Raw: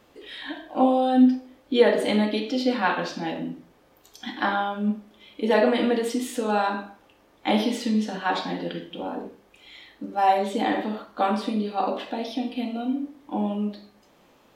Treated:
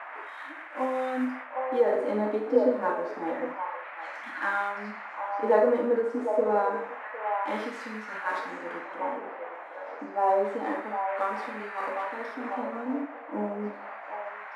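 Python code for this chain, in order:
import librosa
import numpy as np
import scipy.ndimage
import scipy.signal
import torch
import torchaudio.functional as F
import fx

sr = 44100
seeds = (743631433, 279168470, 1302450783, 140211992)

y = fx.cvsd(x, sr, bps=64000)
y = scipy.signal.sosfilt(scipy.signal.butter(2, 250.0, 'highpass', fs=sr, output='sos'), y)
y = fx.peak_eq(y, sr, hz=730.0, db=-13.0, octaves=0.22)
y = fx.hpss(y, sr, part='percussive', gain_db=-8)
y = fx.peak_eq(y, sr, hz=3200.0, db=-12.0, octaves=1.1)
y = fx.dmg_noise_band(y, sr, seeds[0], low_hz=580.0, high_hz=2200.0, level_db=-44.0)
y = fx.echo_stepped(y, sr, ms=756, hz=750.0, octaves=1.4, feedback_pct=70, wet_db=-3)
y = fx.filter_lfo_bandpass(y, sr, shape='sine', hz=0.28, low_hz=540.0, high_hz=1600.0, q=0.88)
y = fx.am_noise(y, sr, seeds[1], hz=5.7, depth_pct=55)
y = y * librosa.db_to_amplitude(6.0)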